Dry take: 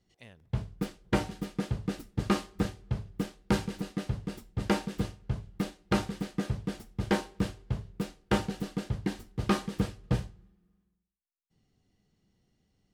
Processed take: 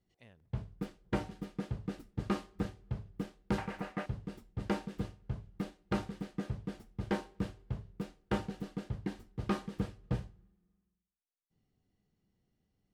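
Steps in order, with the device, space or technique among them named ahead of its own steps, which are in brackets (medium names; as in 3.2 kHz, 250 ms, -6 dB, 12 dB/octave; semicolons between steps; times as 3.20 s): 3.58–4.06 s: high-order bell 1.2 kHz +12 dB 2.5 oct; behind a face mask (treble shelf 3.1 kHz -7.5 dB); trim -6 dB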